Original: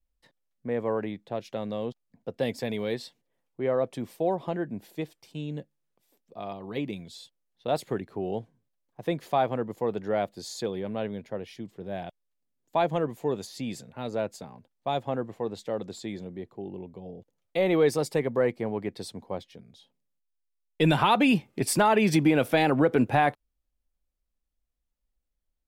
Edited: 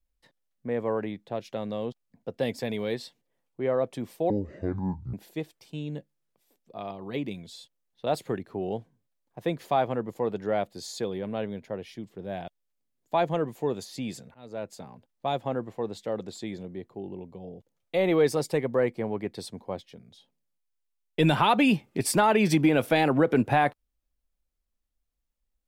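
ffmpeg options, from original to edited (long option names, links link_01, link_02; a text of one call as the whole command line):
ffmpeg -i in.wav -filter_complex "[0:a]asplit=4[link_01][link_02][link_03][link_04];[link_01]atrim=end=4.304[link_05];[link_02]atrim=start=4.3:end=4.75,asetpts=PTS-STARTPTS,asetrate=23814,aresample=44100[link_06];[link_03]atrim=start=4.746:end=13.96,asetpts=PTS-STARTPTS,afade=type=out:start_time=9.21:duration=0.004:curve=hsin:silence=0.0668344[link_07];[link_04]atrim=start=13.96,asetpts=PTS-STARTPTS,afade=type=in:duration=0.52:silence=0.0668344[link_08];[link_05][link_06]acrossfade=duration=0.004:curve1=hsin:curve2=hsin[link_09];[link_07][link_08]concat=n=2:v=0:a=1[link_10];[link_09][link_10]acrossfade=duration=0.004:curve1=hsin:curve2=hsin" out.wav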